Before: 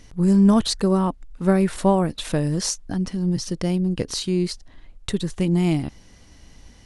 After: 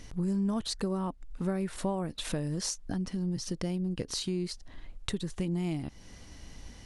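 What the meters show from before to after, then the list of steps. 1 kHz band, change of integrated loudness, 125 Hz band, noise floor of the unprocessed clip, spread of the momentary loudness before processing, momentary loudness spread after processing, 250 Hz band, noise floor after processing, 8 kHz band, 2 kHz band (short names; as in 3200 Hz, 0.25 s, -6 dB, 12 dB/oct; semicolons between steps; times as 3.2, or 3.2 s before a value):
-13.5 dB, -12.0 dB, -11.5 dB, -49 dBFS, 11 LU, 16 LU, -12.5 dB, -51 dBFS, -8.5 dB, -10.0 dB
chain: compressor 3:1, threshold -33 dBFS, peak gain reduction 16 dB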